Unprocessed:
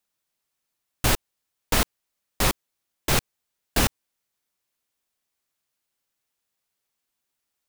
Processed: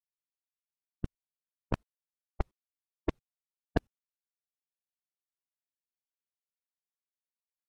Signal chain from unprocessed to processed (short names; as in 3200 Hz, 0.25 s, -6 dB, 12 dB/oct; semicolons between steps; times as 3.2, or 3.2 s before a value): per-bin expansion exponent 1.5; low-pass opened by the level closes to 1200 Hz, open at -24 dBFS; 1.06–1.74 flipped gate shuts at -20 dBFS, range -31 dB; low shelf 470 Hz +12 dB; low-pass opened by the level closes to 880 Hz, open at -16.5 dBFS; flipped gate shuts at -12 dBFS, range -31 dB; upward expander 2.5:1, over -41 dBFS; gain -1.5 dB